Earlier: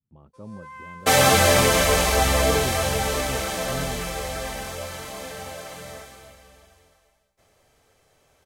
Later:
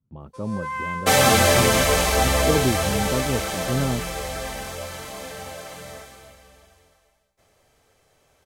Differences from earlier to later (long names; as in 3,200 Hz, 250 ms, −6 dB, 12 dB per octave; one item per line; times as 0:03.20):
speech +11.0 dB
first sound +12.0 dB